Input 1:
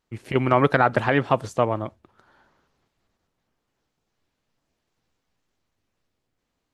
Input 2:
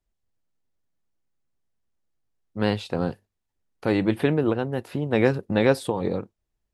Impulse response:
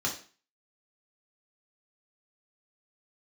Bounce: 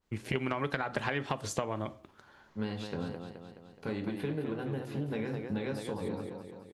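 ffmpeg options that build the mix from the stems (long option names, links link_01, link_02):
-filter_complex "[0:a]acompressor=threshold=-19dB:ratio=6,adynamicequalizer=threshold=0.01:dfrequency=1800:dqfactor=0.7:tfrequency=1800:tqfactor=0.7:attack=5:release=100:ratio=0.375:range=3:mode=boostabove:tftype=highshelf,volume=-0.5dB,asplit=2[link_01][link_02];[link_02]volume=-18dB[link_03];[1:a]acompressor=threshold=-23dB:ratio=6,volume=-10.5dB,asplit=3[link_04][link_05][link_06];[link_05]volume=-7.5dB[link_07];[link_06]volume=-5dB[link_08];[2:a]atrim=start_sample=2205[link_09];[link_03][link_07]amix=inputs=2:normalize=0[link_10];[link_10][link_09]afir=irnorm=-1:irlink=0[link_11];[link_08]aecho=0:1:212|424|636|848|1060|1272|1484|1696:1|0.56|0.314|0.176|0.0983|0.0551|0.0308|0.0173[link_12];[link_01][link_04][link_11][link_12]amix=inputs=4:normalize=0,acompressor=threshold=-29dB:ratio=6"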